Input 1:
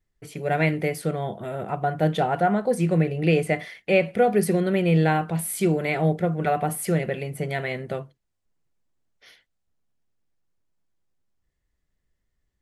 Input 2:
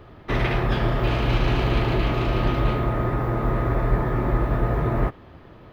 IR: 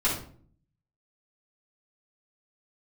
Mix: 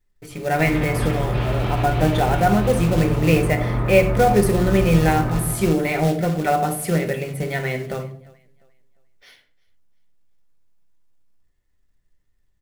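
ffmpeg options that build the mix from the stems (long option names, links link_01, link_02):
-filter_complex "[0:a]acrusher=bits=4:mode=log:mix=0:aa=0.000001,volume=0dB,asplit=4[link_01][link_02][link_03][link_04];[link_02]volume=-13.5dB[link_05];[link_03]volume=-21.5dB[link_06];[1:a]adelay=300,volume=-5.5dB,asplit=3[link_07][link_08][link_09];[link_08]volume=-13.5dB[link_10];[link_09]volume=-4.5dB[link_11];[link_04]apad=whole_len=265638[link_12];[link_07][link_12]sidechaincompress=threshold=-29dB:ratio=8:attack=16:release=157[link_13];[2:a]atrim=start_sample=2205[link_14];[link_05][link_10]amix=inputs=2:normalize=0[link_15];[link_15][link_14]afir=irnorm=-1:irlink=0[link_16];[link_06][link_11]amix=inputs=2:normalize=0,aecho=0:1:350|700|1050|1400|1750:1|0.32|0.102|0.0328|0.0105[link_17];[link_01][link_13][link_16][link_17]amix=inputs=4:normalize=0"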